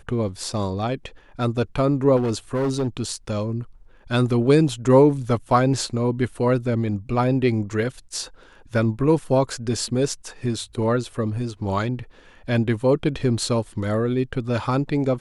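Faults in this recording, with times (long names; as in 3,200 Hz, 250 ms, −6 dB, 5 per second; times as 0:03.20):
0:02.16–0:02.88: clipping −19 dBFS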